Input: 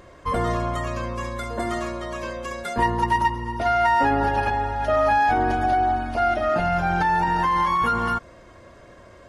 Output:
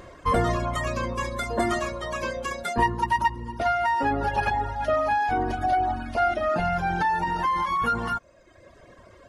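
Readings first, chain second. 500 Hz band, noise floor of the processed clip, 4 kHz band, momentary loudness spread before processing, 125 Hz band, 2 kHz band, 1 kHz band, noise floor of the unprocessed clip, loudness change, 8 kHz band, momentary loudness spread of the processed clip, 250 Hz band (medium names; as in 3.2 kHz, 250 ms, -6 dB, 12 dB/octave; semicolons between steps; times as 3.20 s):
-2.5 dB, -53 dBFS, -1.0 dB, 11 LU, -2.5 dB, -2.5 dB, -3.0 dB, -48 dBFS, -3.0 dB, no reading, 6 LU, -3.0 dB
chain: reverb removal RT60 1.1 s; gain riding within 4 dB 0.5 s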